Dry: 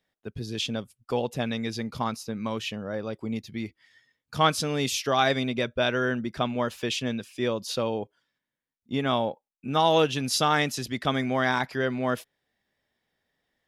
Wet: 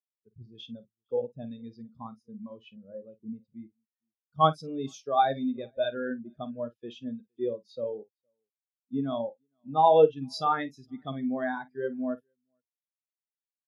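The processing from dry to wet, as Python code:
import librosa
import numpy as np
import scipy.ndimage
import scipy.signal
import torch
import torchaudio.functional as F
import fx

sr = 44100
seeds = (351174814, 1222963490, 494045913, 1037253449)

p1 = fx.high_shelf(x, sr, hz=4300.0, db=5.5)
p2 = p1 + fx.echo_multitap(p1, sr, ms=(51, 463), db=(-8.0, -17.5), dry=0)
y = fx.spectral_expand(p2, sr, expansion=2.5)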